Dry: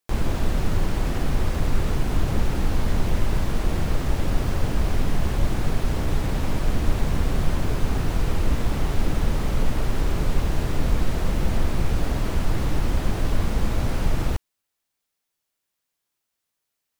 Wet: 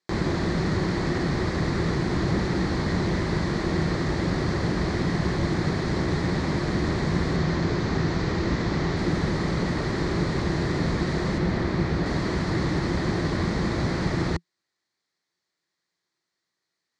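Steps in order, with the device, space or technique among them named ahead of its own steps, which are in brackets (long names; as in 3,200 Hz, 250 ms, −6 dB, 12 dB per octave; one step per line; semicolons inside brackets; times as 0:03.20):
car door speaker (loudspeaker in its box 83–7,000 Hz, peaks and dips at 170 Hz +8 dB, 350 Hz +9 dB, 1,100 Hz +3 dB, 1,900 Hz +9 dB, 2,800 Hz −7 dB, 4,300 Hz +8 dB)
0:07.36–0:08.97: low-pass filter 7,600 Hz 24 dB per octave
0:11.38–0:12.06: high-shelf EQ 7,000 Hz −11.5 dB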